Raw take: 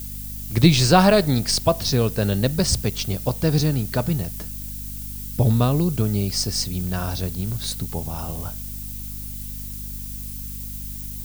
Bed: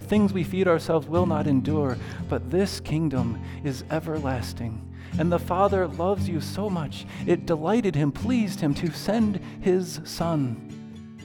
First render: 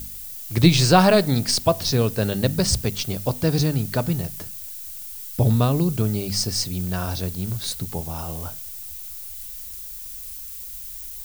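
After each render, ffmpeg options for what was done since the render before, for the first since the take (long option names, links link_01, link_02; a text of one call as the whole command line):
ffmpeg -i in.wav -af "bandreject=frequency=50:width_type=h:width=4,bandreject=frequency=100:width_type=h:width=4,bandreject=frequency=150:width_type=h:width=4,bandreject=frequency=200:width_type=h:width=4,bandreject=frequency=250:width_type=h:width=4" out.wav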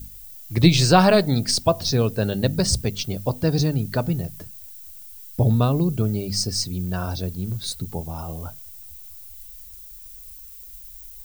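ffmpeg -i in.wav -af "afftdn=noise_reduction=9:noise_floor=-36" out.wav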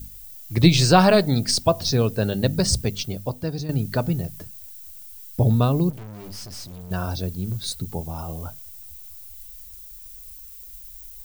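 ffmpeg -i in.wav -filter_complex "[0:a]asettb=1/sr,asplit=3[link_01][link_02][link_03];[link_01]atrim=end=5.904[link_04];[link_02]atrim=start=5.9:end=6.91,asetpts=PTS-STARTPTS,afade=type=in:duration=0.004:curve=qsin,afade=type=out:start_time=1.006:duration=0.004:curve=qsin,aeval=exprs='(tanh(63.1*val(0)+0.55)-tanh(0.55))/63.1':channel_layout=same[link_05];[link_03]atrim=start=6.906[link_06];[link_04][link_05]acrossfade=duration=0.004:curve1=hsin:curve2=qsin[link_07];[link_07][link_06]acrossfade=duration=0.004:curve1=qsin:curve2=hsin,asplit=2[link_08][link_09];[link_08]atrim=end=3.69,asetpts=PTS-STARTPTS,afade=type=out:start_time=2.9:duration=0.79:silence=0.251189[link_10];[link_09]atrim=start=3.69,asetpts=PTS-STARTPTS,afade=type=in:duration=0.004:curve=hsin:silence=0.251189[link_11];[link_10][link_11]concat=n=2:v=0:a=1" out.wav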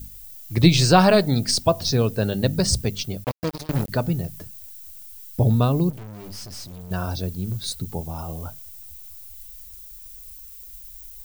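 ffmpeg -i in.wav -filter_complex "[0:a]asettb=1/sr,asplit=3[link_01][link_02][link_03];[link_01]atrim=end=3.244[link_04];[link_02]atrim=start=3.24:end=3.89,asetpts=PTS-STARTPTS,afade=type=in:duration=0.004:curve=qsin,afade=type=out:start_time=0.646:duration=0.004:curve=qsin,acrusher=bits=3:mix=0:aa=0.5[link_05];[link_03]atrim=start=3.886[link_06];[link_04][link_05]acrossfade=duration=0.004:curve1=hsin:curve2=qsin[link_07];[link_07][link_06]acrossfade=duration=0.004:curve1=qsin:curve2=hsin" out.wav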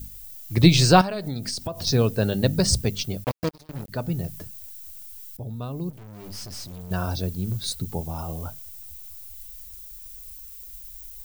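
ffmpeg -i in.wav -filter_complex "[0:a]asettb=1/sr,asplit=3[link_01][link_02][link_03];[link_01]atrim=end=1.014[link_04];[link_02]atrim=start=1.01:end=1.87,asetpts=PTS-STARTPTS,afade=type=in:duration=0.004:curve=qsin,afade=type=out:start_time=0.856:duration=0.004:curve=qsin,acompressor=threshold=-26dB:ratio=8:attack=3.2:release=140:knee=1:detection=peak[link_05];[link_03]atrim=start=1.866[link_06];[link_04][link_05]acrossfade=duration=0.004:curve1=hsin:curve2=qsin[link_07];[link_07][link_06]acrossfade=duration=0.004:curve1=qsin:curve2=hsin,asplit=3[link_08][link_09][link_10];[link_08]atrim=end=3.49,asetpts=PTS-STARTPTS,afade=type=out:start_time=3.486:duration=0.004:curve=hsin:silence=0.16788[link_11];[link_09]atrim=start=3.49:end=5.37,asetpts=PTS-STARTPTS,afade=type=in:duration=0.81:curve=qua:silence=0.16788,afade=type=out:start_time=1.876:duration=0.004:curve=hsin:silence=0.141254[link_12];[link_10]atrim=start=5.37,asetpts=PTS-STARTPTS,afade=type=in:duration=1:curve=qua:silence=0.141254[link_13];[link_11][link_12][link_13]concat=n=3:v=0:a=1" out.wav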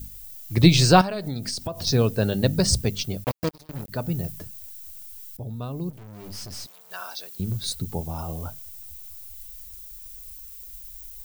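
ffmpeg -i in.wav -filter_complex "[0:a]asettb=1/sr,asplit=3[link_01][link_02][link_03];[link_01]atrim=end=3.254[link_04];[link_02]atrim=start=3.25:end=4.32,asetpts=PTS-STARTPTS,afade=type=in:duration=0.004:curve=qsin,afade=type=out:start_time=1.066:duration=0.004:curve=qsin,highshelf=frequency=10000:gain=5[link_05];[link_03]atrim=start=4.316[link_06];[link_04][link_05]acrossfade=duration=0.004:curve1=hsin:curve2=qsin[link_07];[link_07][link_06]acrossfade=duration=0.004:curve1=qsin:curve2=hsin,asettb=1/sr,asplit=3[link_08][link_09][link_10];[link_08]atrim=end=6.664[link_11];[link_09]atrim=start=6.66:end=7.4,asetpts=PTS-STARTPTS,afade=type=in:duration=0.004:curve=qsin,afade=type=out:start_time=0.736:duration=0.004:curve=qsin,highpass=1100[link_12];[link_10]atrim=start=7.396[link_13];[link_11][link_12]acrossfade=duration=0.004:curve1=hsin:curve2=qsin[link_14];[link_14][link_13]acrossfade=duration=0.004:curve1=qsin:curve2=hsin" out.wav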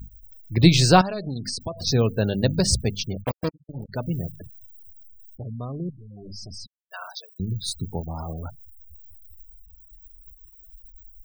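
ffmpeg -i in.wav -af "afftfilt=real='re*gte(hypot(re,im),0.02)':imag='im*gte(hypot(re,im),0.02)':win_size=1024:overlap=0.75" out.wav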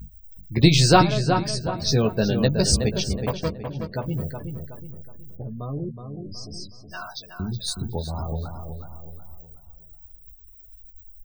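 ffmpeg -i in.wav -filter_complex "[0:a]asplit=2[link_01][link_02];[link_02]adelay=14,volume=-6dB[link_03];[link_01][link_03]amix=inputs=2:normalize=0,asplit=2[link_04][link_05];[link_05]adelay=370,lowpass=frequency=2800:poles=1,volume=-6.5dB,asplit=2[link_06][link_07];[link_07]adelay=370,lowpass=frequency=2800:poles=1,volume=0.41,asplit=2[link_08][link_09];[link_09]adelay=370,lowpass=frequency=2800:poles=1,volume=0.41,asplit=2[link_10][link_11];[link_11]adelay=370,lowpass=frequency=2800:poles=1,volume=0.41,asplit=2[link_12][link_13];[link_13]adelay=370,lowpass=frequency=2800:poles=1,volume=0.41[link_14];[link_04][link_06][link_08][link_10][link_12][link_14]amix=inputs=6:normalize=0" out.wav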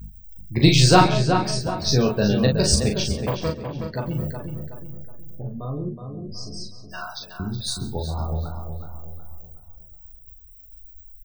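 ffmpeg -i in.wav -filter_complex "[0:a]asplit=2[link_01][link_02];[link_02]adelay=39,volume=-4dB[link_03];[link_01][link_03]amix=inputs=2:normalize=0,aecho=1:1:136:0.126" out.wav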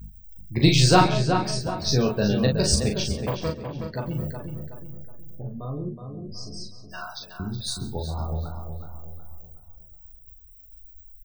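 ffmpeg -i in.wav -af "volume=-2.5dB" out.wav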